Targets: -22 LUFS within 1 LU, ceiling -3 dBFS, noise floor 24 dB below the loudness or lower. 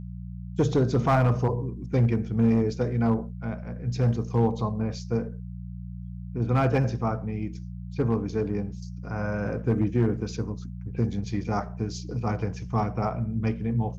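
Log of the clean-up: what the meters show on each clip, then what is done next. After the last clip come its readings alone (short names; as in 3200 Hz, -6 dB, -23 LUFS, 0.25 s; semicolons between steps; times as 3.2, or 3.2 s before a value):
clipped 0.6%; flat tops at -15.0 dBFS; hum 60 Hz; harmonics up to 180 Hz; hum level -36 dBFS; loudness -27.0 LUFS; peak -15.0 dBFS; loudness target -22.0 LUFS
-> clip repair -15 dBFS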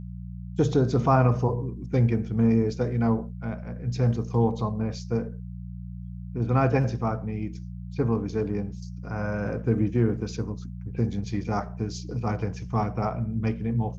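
clipped 0.0%; hum 60 Hz; harmonics up to 180 Hz; hum level -36 dBFS
-> de-hum 60 Hz, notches 3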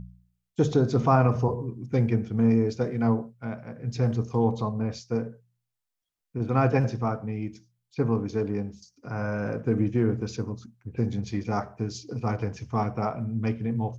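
hum none; loudness -27.5 LUFS; peak -7.5 dBFS; loudness target -22.0 LUFS
-> gain +5.5 dB; limiter -3 dBFS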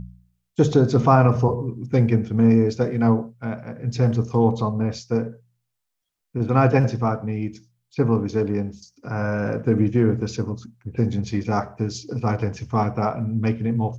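loudness -22.0 LUFS; peak -3.0 dBFS; noise floor -78 dBFS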